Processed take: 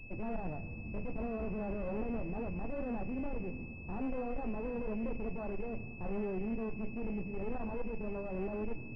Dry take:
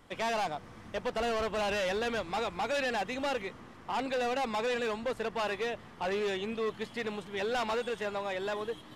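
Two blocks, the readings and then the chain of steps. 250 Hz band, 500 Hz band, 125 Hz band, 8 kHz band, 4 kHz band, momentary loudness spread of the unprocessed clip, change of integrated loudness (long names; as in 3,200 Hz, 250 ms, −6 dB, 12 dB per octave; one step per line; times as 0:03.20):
+2.5 dB, −7.5 dB, +5.5 dB, below −30 dB, below −30 dB, 6 LU, −6.5 dB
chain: adaptive Wiener filter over 25 samples
dynamic equaliser 250 Hz, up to +6 dB, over −51 dBFS, Q 1.5
flanger 0.34 Hz, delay 8.1 ms, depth 9 ms, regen +52%
asymmetric clip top −50 dBFS
spectral tilt −4.5 dB per octave
soft clipping −31 dBFS, distortion −11 dB
four-comb reverb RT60 1.2 s, combs from 31 ms, DRR 13 dB
switching amplifier with a slow clock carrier 2,600 Hz
level −1 dB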